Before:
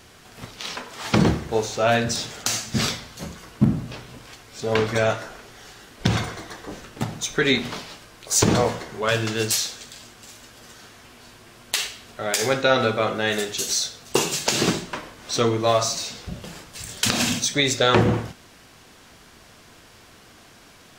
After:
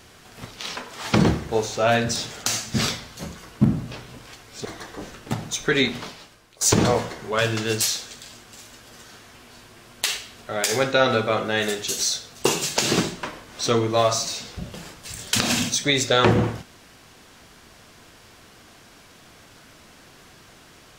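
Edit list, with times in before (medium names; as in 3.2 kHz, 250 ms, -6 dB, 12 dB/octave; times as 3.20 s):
4.65–6.35 s: delete
7.43–8.31 s: fade out, to -12.5 dB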